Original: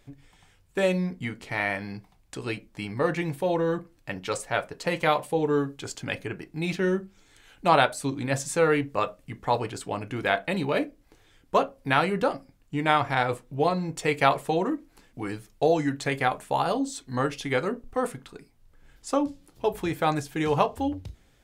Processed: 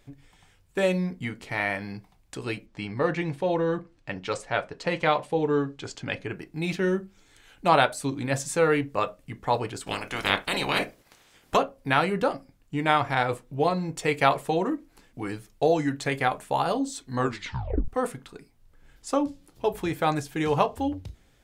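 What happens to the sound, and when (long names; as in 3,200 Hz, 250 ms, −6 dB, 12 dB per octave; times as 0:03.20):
0:02.66–0:06.29: low-pass filter 6,000 Hz
0:09.86–0:11.55: ceiling on every frequency bin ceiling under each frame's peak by 23 dB
0:17.19: tape stop 0.69 s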